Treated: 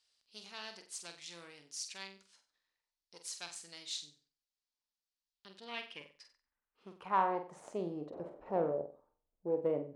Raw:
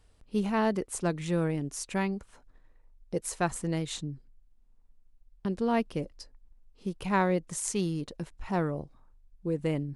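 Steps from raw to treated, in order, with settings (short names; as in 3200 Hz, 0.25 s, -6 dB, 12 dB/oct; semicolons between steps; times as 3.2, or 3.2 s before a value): one diode to ground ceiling -29 dBFS; 8.12–8.72 wind noise 480 Hz -33 dBFS; band-pass sweep 4700 Hz -> 550 Hz, 5.29–7.87; on a send: flutter echo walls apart 8 m, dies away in 0.36 s; on the sum: gain +3 dB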